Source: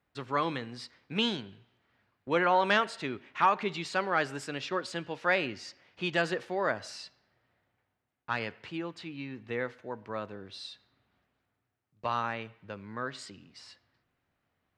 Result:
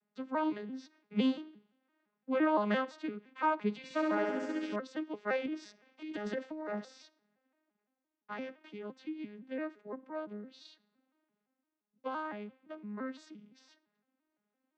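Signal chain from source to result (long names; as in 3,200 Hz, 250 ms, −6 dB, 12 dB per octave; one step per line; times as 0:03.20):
vocoder with an arpeggio as carrier major triad, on G#3, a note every 171 ms
0:03.77–0:04.76: flutter between parallel walls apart 11.5 metres, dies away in 1.3 s
0:05.46–0:06.85: compressor whose output falls as the input rises −35 dBFS, ratio −1
level −3 dB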